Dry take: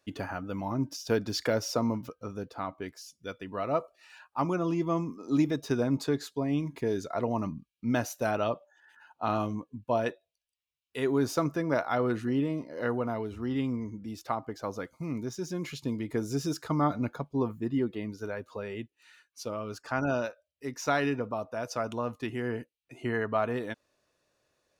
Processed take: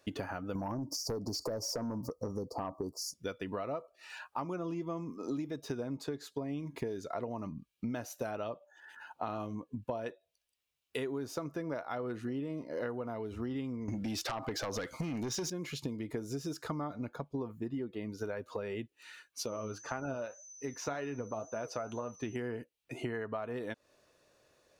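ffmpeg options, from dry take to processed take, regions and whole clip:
ffmpeg -i in.wav -filter_complex "[0:a]asettb=1/sr,asplit=3[link_01][link_02][link_03];[link_01]atrim=end=0.554[link_04];[link_02]atrim=start=0.55:end=3.14,asetpts=PTS-STARTPTS,afade=type=in:duration=0.004:curve=qsin,afade=type=out:start_time=2.586:duration=0.004:curve=qsin,asuperstop=centerf=2300:order=20:qfactor=0.71,acompressor=threshold=-32dB:ratio=2.5:attack=3.2:release=140:knee=1:detection=peak,aeval=exprs='0.0794*sin(PI/2*1.78*val(0)/0.0794)':channel_layout=same[link_05];[link_03]atrim=start=3.136[link_06];[link_04][link_05]acrossfade=duration=0.004:curve1=hsin:curve2=qsin[link_07];[link_07][link_06]acrossfade=duration=0.004:curve1=qsin:curve2=hsin,asettb=1/sr,asplit=3[link_08][link_09][link_10];[link_08]atrim=end=13.884[link_11];[link_09]atrim=start=13.88:end=15.5,asetpts=PTS-STARTPTS,afade=type=in:duration=0.004:curve=qsin,afade=type=out:start_time=1.616:duration=0.004:curve=qsin,equalizer=frequency=3200:width_type=o:width=2.8:gain=8,acompressor=threshold=-35dB:ratio=10:attack=3.2:release=140:knee=1:detection=peak,aeval=exprs='0.0631*sin(PI/2*3.16*val(0)/0.0631)':channel_layout=same[link_12];[link_10]atrim=start=15.496[link_13];[link_11][link_12]acrossfade=duration=0.004:curve1=hsin:curve2=qsin[link_14];[link_14][link_13]acrossfade=duration=0.004:curve1=qsin:curve2=hsin,asettb=1/sr,asplit=3[link_15][link_16][link_17];[link_15]atrim=end=19.464[link_18];[link_16]atrim=start=19.46:end=22.36,asetpts=PTS-STARTPTS,afade=type=in:duration=0.004:curve=qsin,afade=type=out:start_time=2.896:duration=0.004:curve=qsin,aemphasis=mode=reproduction:type=cd,aeval=exprs='val(0)+0.00282*sin(2*PI*6100*n/s)':channel_layout=same,flanger=delay=4.9:depth=5.4:regen=63:speed=1.9:shape=sinusoidal[link_19];[link_17]atrim=start=22.356[link_20];[link_18][link_19]acrossfade=duration=0.004:curve1=hsin:curve2=qsin[link_21];[link_21][link_20]acrossfade=duration=0.004:curve1=qsin:curve2=hsin,equalizer=frequency=490:width=1.5:gain=3,acompressor=threshold=-40dB:ratio=12,volume=5.5dB" out.wav

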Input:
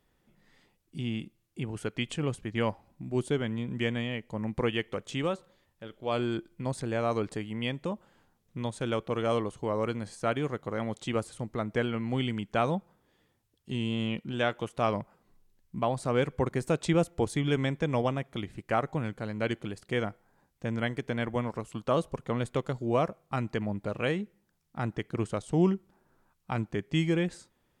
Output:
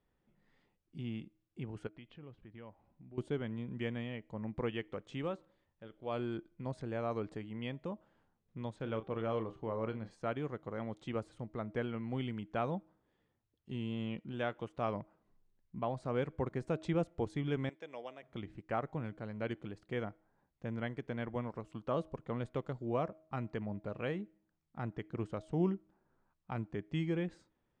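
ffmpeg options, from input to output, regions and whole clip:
ffmpeg -i in.wav -filter_complex "[0:a]asettb=1/sr,asplit=3[link_01][link_02][link_03];[link_01]atrim=end=1.874[link_04];[link_02]atrim=start=1.87:end=3.18,asetpts=PTS-STARTPTS,afade=type=in:duration=0.004:curve=qsin,afade=type=out:start_time=1.306:duration=0.004:curve=qsin,lowpass=frequency=4300:width=0.5412,lowpass=frequency=4300:width=1.3066,acompressor=threshold=-51dB:ratio=2:attack=3.2:release=140:knee=1:detection=peak[link_05];[link_03]atrim=start=3.176[link_06];[link_04][link_05]acrossfade=duration=0.004:curve1=hsin:curve2=qsin[link_07];[link_07][link_06]acrossfade=duration=0.004:curve1=qsin:curve2=hsin,asettb=1/sr,asplit=3[link_08][link_09][link_10];[link_08]atrim=end=8.764[link_11];[link_09]atrim=start=8.76:end=10.11,asetpts=PTS-STARTPTS,afade=type=in:duration=0.004:curve=qsin,afade=type=out:start_time=1.346:duration=0.004:curve=qsin,lowpass=4500,asplit=2[link_12][link_13];[link_13]adelay=36,volume=-11dB[link_14];[link_12][link_14]amix=inputs=2:normalize=0,atrim=end_sample=59535,bandreject=frequency=391.2:width_type=h:width=4,bandreject=frequency=782.4:width_type=h:width=4,bandreject=frequency=1173.6:width_type=h:width=4,bandreject=frequency=1564.8:width_type=h:width=4,bandreject=frequency=1956:width_type=h:width=4,bandreject=frequency=2347.2:width_type=h:width=4,bandreject=frequency=2738.4:width_type=h:width=4,bandreject=frequency=3129.6:width_type=h:width=4,bandreject=frequency=3520.8:width_type=h:width=4,bandreject=frequency=3912:width_type=h:width=4,bandreject=frequency=4303.2:width_type=h:width=4,bandreject=frequency=4694.4:width_type=h:width=4,bandreject=frequency=5085.6:width_type=h:width=4,bandreject=frequency=5476.8:width_type=h:width=4,bandreject=frequency=5868:width_type=h:width=4,bandreject=frequency=6259.2:width_type=h:width=4,bandreject=frequency=6650.4:width_type=h:width=4,bandreject=frequency=7041.6:width_type=h:width=4,bandreject=frequency=7432.8:width_type=h:width=4,bandreject=frequency=7824:width_type=h:width=4,bandreject=frequency=8215.2:width_type=h:width=4,bandreject=frequency=8606.4:width_type=h:width=4,bandreject=frequency=8997.6:width_type=h:width=4,bandreject=frequency=9388.8:width_type=h:width=4,bandreject=frequency=9780:width_type=h:width=4,bandreject=frequency=10171.2:width_type=h:width=4,bandreject=frequency=10562.4:width_type=h:width=4,bandreject=frequency=10953.6:width_type=h:width=4,bandreject=frequency=11344.8:width_type=h:width=4,bandreject=frequency=11736:width_type=h:width=4,bandreject=frequency=12127.2:width_type=h:width=4,bandreject=frequency=12518.4:width_type=h:width=4,bandreject=frequency=12909.6:width_type=h:width=4,bandreject=frequency=13300.8:width_type=h:width=4,bandreject=frequency=13692:width_type=h:width=4,bandreject=frequency=14083.2:width_type=h:width=4,bandreject=frequency=14474.4:width_type=h:width=4[link_15];[link_10]atrim=start=10.106[link_16];[link_11][link_15]acrossfade=duration=0.004:curve1=hsin:curve2=qsin[link_17];[link_17][link_16]acrossfade=duration=0.004:curve1=qsin:curve2=hsin,asettb=1/sr,asplit=3[link_18][link_19][link_20];[link_18]atrim=end=17.694[link_21];[link_19]atrim=start=17.69:end=18.23,asetpts=PTS-STARTPTS,afade=type=in:duration=0.004:curve=qsin,afade=type=out:start_time=0.536:duration=0.004:curve=qsin,highpass=650,equalizer=frequency=1100:width=0.92:gain=-9.5[link_22];[link_20]atrim=start=18.226[link_23];[link_21][link_22]acrossfade=duration=0.004:curve1=hsin:curve2=qsin[link_24];[link_24][link_23]acrossfade=duration=0.004:curve1=qsin:curve2=hsin,lowpass=6800,highshelf=frequency=3200:gain=-10.5,bandreject=frequency=316.6:width_type=h:width=4,bandreject=frequency=633.2:width_type=h:width=4,volume=-7.5dB" out.wav

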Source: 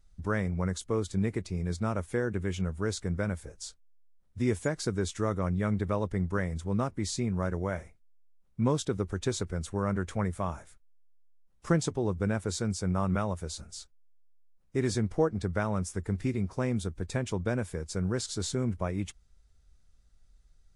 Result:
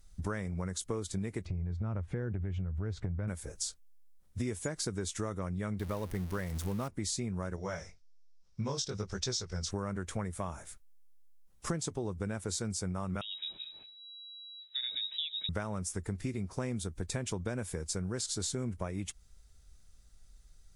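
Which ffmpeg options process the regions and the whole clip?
ffmpeg -i in.wav -filter_complex "[0:a]asettb=1/sr,asplit=3[link_01][link_02][link_03];[link_01]atrim=end=1.454[link_04];[link_02]atrim=start=1.45:end=3.28,asetpts=PTS-STARTPTS,afade=type=in:duration=0.004:curve=qsin,afade=type=out:start_time=1.826:duration=0.004:curve=qsin,lowpass=2400,equalizer=frequency=81:width_type=o:width=2.4:gain=14,acompressor=threshold=-30dB:ratio=3:attack=3.2:release=140:knee=1:detection=peak[link_05];[link_03]atrim=start=3.276[link_06];[link_04][link_05]acrossfade=duration=0.004:curve1=hsin:curve2=qsin[link_07];[link_07][link_06]acrossfade=duration=0.004:curve1=qsin:curve2=hsin,asettb=1/sr,asplit=3[link_08][link_09][link_10];[link_08]atrim=end=5.794[link_11];[link_09]atrim=start=5.79:end=6.88,asetpts=PTS-STARTPTS,afade=type=in:duration=0.004:curve=qsin,afade=type=out:start_time=1.086:duration=0.004:curve=qsin,aeval=exprs='val(0)+0.5*0.0141*sgn(val(0))':channel_layout=same,equalizer=frequency=7500:width=2.3:gain=-4[link_12];[link_10]atrim=start=6.876[link_13];[link_11][link_12]acrossfade=duration=0.004:curve1=hsin:curve2=qsin[link_14];[link_14][link_13]acrossfade=duration=0.004:curve1=qsin:curve2=hsin,asettb=1/sr,asplit=3[link_15][link_16][link_17];[link_15]atrim=end=7.564[link_18];[link_16]atrim=start=7.56:end=9.71,asetpts=PTS-STARTPTS,afade=type=in:duration=0.004:curve=qsin,afade=type=out:start_time=2.146:duration=0.004:curve=qsin,equalizer=frequency=290:width=2.5:gain=-8,flanger=delay=15:depth=7.3:speed=1.2,lowpass=frequency=5400:width_type=q:width=4.8[link_19];[link_17]atrim=start=9.706[link_20];[link_18][link_19]acrossfade=duration=0.004:curve1=hsin:curve2=qsin[link_21];[link_21][link_20]acrossfade=duration=0.004:curve1=qsin:curve2=hsin,asettb=1/sr,asplit=3[link_22][link_23][link_24];[link_22]atrim=end=13.214[link_25];[link_23]atrim=start=13.21:end=15.49,asetpts=PTS-STARTPTS,afade=type=in:duration=0.004:curve=qsin,afade=type=out:start_time=2.276:duration=0.004:curve=qsin,acompressor=threshold=-54dB:ratio=1.5:attack=3.2:release=140:knee=1:detection=peak,aecho=1:1:113|226|339:0.075|0.0292|0.0114,atrim=end_sample=100548,lowpass=frequency=3300:width_type=q:width=0.5098,lowpass=frequency=3300:width_type=q:width=0.6013,lowpass=frequency=3300:width_type=q:width=0.9,lowpass=frequency=3300:width_type=q:width=2.563,afreqshift=-3900[link_26];[link_24]atrim=start=15.486[link_27];[link_25][link_26]acrossfade=duration=0.004:curve1=hsin:curve2=qsin[link_28];[link_28][link_27]acrossfade=duration=0.004:curve1=qsin:curve2=hsin,aemphasis=mode=production:type=cd,acompressor=threshold=-36dB:ratio=6,volume=3.5dB" out.wav

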